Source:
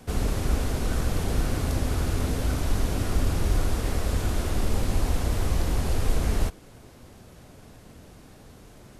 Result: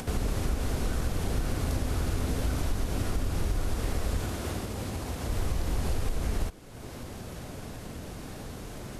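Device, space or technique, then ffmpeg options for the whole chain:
upward and downward compression: -filter_complex "[0:a]acompressor=mode=upward:threshold=-30dB:ratio=2.5,acompressor=threshold=-24dB:ratio=6,asettb=1/sr,asplit=3[link_01][link_02][link_03];[link_01]atrim=end=4.244[link_04];[link_02]atrim=start=4.24:end=5.29,asetpts=PTS-STARTPTS,afade=type=in:duration=0.004:curve=qsin,afade=type=out:start_time=1.046:duration=0.004:curve=qsin,highpass=76[link_05];[link_03]atrim=start=5.286[link_06];[link_04][link_05]acrossfade=duration=0.004:curve1=hsin:curve2=qsin[link_07];[link_07][link_06]acrossfade=duration=0.004:curve1=qsin:curve2=hsin"

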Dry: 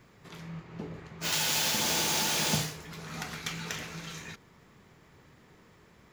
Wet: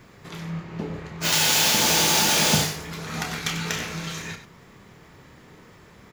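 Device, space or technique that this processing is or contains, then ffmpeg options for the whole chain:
slapback doubling: -filter_complex "[0:a]asplit=3[link_01][link_02][link_03];[link_02]adelay=30,volume=-9dB[link_04];[link_03]adelay=95,volume=-11dB[link_05];[link_01][link_04][link_05]amix=inputs=3:normalize=0,volume=8dB"

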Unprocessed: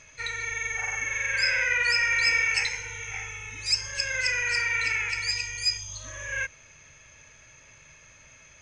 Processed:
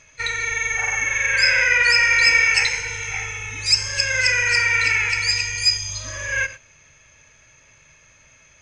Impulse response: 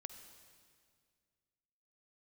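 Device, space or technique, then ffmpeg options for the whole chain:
keyed gated reverb: -filter_complex "[0:a]asplit=3[link_01][link_02][link_03];[1:a]atrim=start_sample=2205[link_04];[link_02][link_04]afir=irnorm=-1:irlink=0[link_05];[link_03]apad=whole_len=379885[link_06];[link_05][link_06]sidechaingate=range=-33dB:threshold=-41dB:ratio=16:detection=peak,volume=8.5dB[link_07];[link_01][link_07]amix=inputs=2:normalize=0"

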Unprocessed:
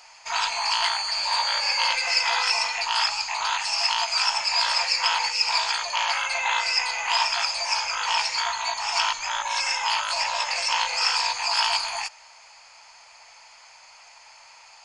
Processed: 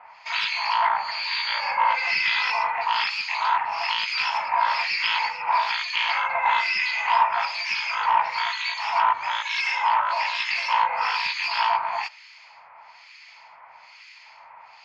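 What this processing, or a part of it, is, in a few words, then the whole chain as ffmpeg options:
guitar amplifier with harmonic tremolo: -filter_complex "[0:a]acrossover=split=1700[link_01][link_02];[link_01]aeval=exprs='val(0)*(1-1/2+1/2*cos(2*PI*1.1*n/s))':channel_layout=same[link_03];[link_02]aeval=exprs='val(0)*(1-1/2-1/2*cos(2*PI*1.1*n/s))':channel_layout=same[link_04];[link_03][link_04]amix=inputs=2:normalize=0,asoftclip=type=tanh:threshold=-17.5dB,highpass=110,equalizer=frequency=170:width_type=q:width=4:gain=4,equalizer=frequency=300:width_type=q:width=4:gain=-7,equalizer=frequency=500:width_type=q:width=4:gain=-4,equalizer=frequency=1000:width_type=q:width=4:gain=5,equalizer=frequency=2100:width_type=q:width=4:gain=5,lowpass=frequency=4400:width=0.5412,lowpass=frequency=4400:width=1.3066,acrossover=split=4000[link_05][link_06];[link_06]acompressor=threshold=-42dB:ratio=4:attack=1:release=60[link_07];[link_05][link_07]amix=inputs=2:normalize=0,volume=6dB"

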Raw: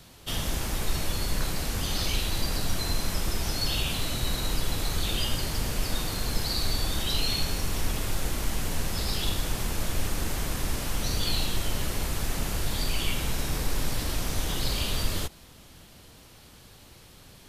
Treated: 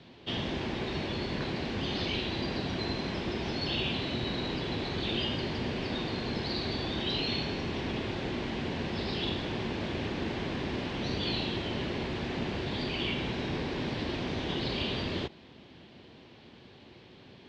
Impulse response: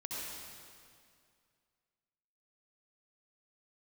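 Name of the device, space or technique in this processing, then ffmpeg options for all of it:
guitar cabinet: -af "highpass=110,equalizer=frequency=240:width_type=q:width=4:gain=5,equalizer=frequency=370:width_type=q:width=4:gain=7,equalizer=frequency=1300:width_type=q:width=4:gain=-7,lowpass=frequency=3800:width=0.5412,lowpass=frequency=3800:width=1.3066"

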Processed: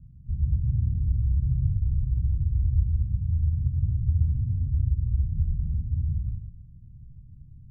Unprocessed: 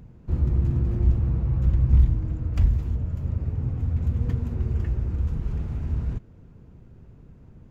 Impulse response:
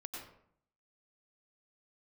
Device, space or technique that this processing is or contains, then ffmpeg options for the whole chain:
club heard from the street: -filter_complex "[0:a]alimiter=limit=-18dB:level=0:latency=1:release=176,lowpass=frequency=160:width=0.5412,lowpass=frequency=160:width=1.3066[link_01];[1:a]atrim=start_sample=2205[link_02];[link_01][link_02]afir=irnorm=-1:irlink=0,volume=4.5dB"

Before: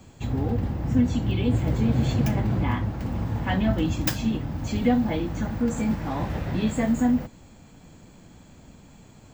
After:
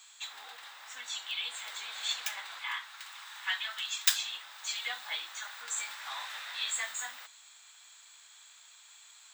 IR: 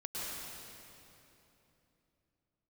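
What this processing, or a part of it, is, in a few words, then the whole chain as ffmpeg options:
headphones lying on a table: -filter_complex "[0:a]asettb=1/sr,asplit=3[link_01][link_02][link_03];[link_01]atrim=end=2.594[link_04];[link_02]atrim=start=2.59:end=4.1,asetpts=PTS-STARTPTS,afade=type=in:duration=0.004:curve=qsin,afade=type=out:start_time=1.506:duration=0.004:curve=qsin,highpass=960[link_05];[link_03]atrim=start=4.096[link_06];[link_04][link_05]acrossfade=duration=0.004:curve1=hsin:curve2=qsin[link_07];[link_07][link_06]acrossfade=duration=0.004:curve1=qsin:curve2=hsin,highpass=frequency=1200:width=0.5412,highpass=frequency=1200:width=1.3066,equalizer=frequency=3700:width_type=o:width=0.33:gain=11.5,equalizer=frequency=8200:width_type=o:width=0.51:gain=9"

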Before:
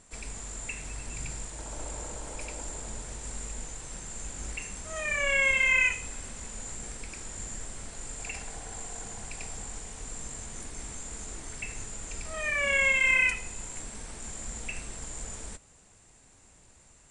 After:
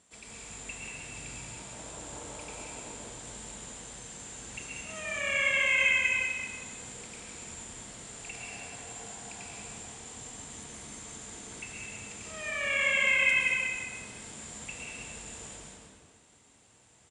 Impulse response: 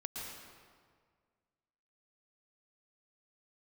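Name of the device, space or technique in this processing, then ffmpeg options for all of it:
PA in a hall: -filter_complex "[0:a]highpass=110,equalizer=frequency=3300:width_type=o:width=0.55:gain=6,aecho=1:1:185:0.531[link_01];[1:a]atrim=start_sample=2205[link_02];[link_01][link_02]afir=irnorm=-1:irlink=0,volume=-3dB"

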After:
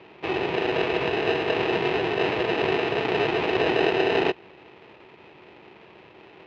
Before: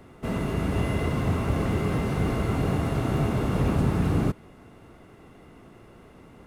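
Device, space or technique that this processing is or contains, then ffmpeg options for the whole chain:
ring modulator pedal into a guitar cabinet: -af "aeval=exprs='val(0)*sgn(sin(2*PI*560*n/s))':channel_layout=same,highpass=85,equalizer=frequency=250:width_type=q:width=4:gain=-4,equalizer=frequency=370:width_type=q:width=4:gain=8,equalizer=frequency=700:width_type=q:width=4:gain=-4,equalizer=frequency=1500:width_type=q:width=4:gain=-5,equalizer=frequency=2500:width_type=q:width=4:gain=8,lowpass=frequency=3700:width=0.5412,lowpass=frequency=3700:width=1.3066"

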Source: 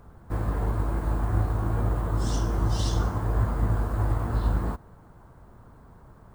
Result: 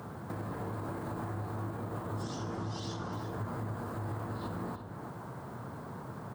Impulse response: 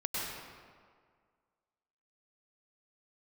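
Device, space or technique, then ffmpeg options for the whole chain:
broadcast voice chain: -filter_complex "[0:a]asettb=1/sr,asplit=3[link_01][link_02][link_03];[link_01]atrim=end=2.234[link_04];[link_02]atrim=start=2.23:end=3.13,asetpts=PTS-STARTPTS,afade=type=in:duration=0.004:curve=qsin,afade=type=out:start_time=0.896:duration=0.004:curve=qsin,lowpass=6400[link_05];[link_03]atrim=start=3.126[link_06];[link_04][link_05]acrossfade=duration=0.004:curve1=hsin:curve2=qsin[link_07];[link_07][link_06]acrossfade=duration=0.004:curve1=qsin:curve2=hsin,highpass=frequency=110:width=0.5412,highpass=frequency=110:width=1.3066,deesser=1,acompressor=threshold=-47dB:ratio=4,equalizer=frequency=4400:width_type=o:width=0.77:gain=2,alimiter=level_in=16dB:limit=-24dB:level=0:latency=1:release=45,volume=-16dB,asplit=2[link_08][link_09];[link_09]adelay=344,volume=-8dB,highshelf=frequency=4000:gain=-7.74[link_10];[link_08][link_10]amix=inputs=2:normalize=0,volume=10dB"

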